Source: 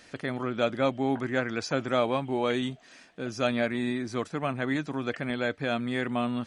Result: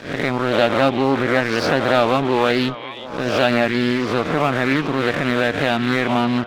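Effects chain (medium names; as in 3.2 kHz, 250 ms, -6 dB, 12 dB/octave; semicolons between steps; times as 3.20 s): reverse spectral sustain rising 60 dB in 0.68 s; inverse Chebyshev low-pass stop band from 8.7 kHz, stop band 40 dB; in parallel at -0.5 dB: peak limiter -22 dBFS, peak gain reduction 11.5 dB; on the sum: crossover distortion -37.5 dBFS; on a send: repeats whose band climbs or falls 370 ms, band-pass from 2.8 kHz, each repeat -1.4 oct, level -9.5 dB; on the sum: loudspeaker Doppler distortion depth 0.28 ms; trim +7 dB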